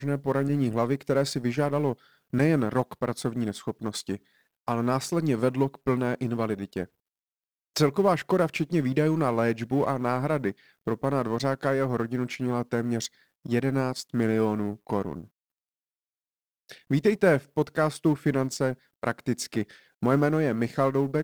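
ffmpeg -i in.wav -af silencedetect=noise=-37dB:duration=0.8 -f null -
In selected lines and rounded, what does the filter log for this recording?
silence_start: 6.85
silence_end: 7.76 | silence_duration: 0.91
silence_start: 15.24
silence_end: 16.69 | silence_duration: 1.46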